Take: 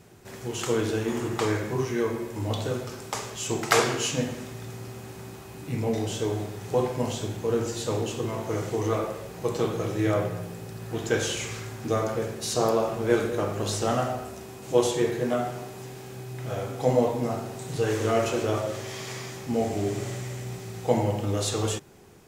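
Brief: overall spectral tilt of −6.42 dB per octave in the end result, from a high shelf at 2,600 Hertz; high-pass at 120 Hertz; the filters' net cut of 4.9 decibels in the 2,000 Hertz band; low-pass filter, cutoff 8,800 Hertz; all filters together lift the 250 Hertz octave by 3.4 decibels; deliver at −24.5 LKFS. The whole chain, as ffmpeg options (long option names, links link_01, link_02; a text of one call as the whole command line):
ffmpeg -i in.wav -af "highpass=120,lowpass=8800,equalizer=frequency=250:width_type=o:gain=5,equalizer=frequency=2000:width_type=o:gain=-3,highshelf=frequency=2600:gain=-8,volume=3dB" out.wav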